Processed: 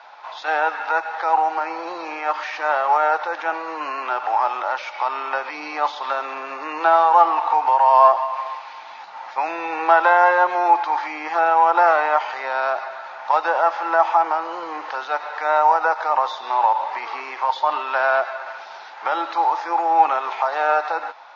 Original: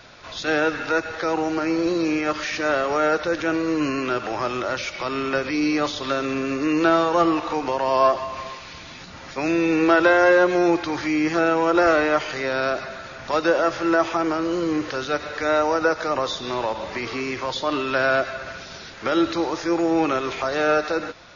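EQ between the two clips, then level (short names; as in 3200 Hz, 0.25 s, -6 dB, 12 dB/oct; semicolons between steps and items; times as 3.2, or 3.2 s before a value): resonant high-pass 850 Hz, resonance Q 7.5; air absorption 130 m; high shelf 4300 Hz -4.5 dB; -1.0 dB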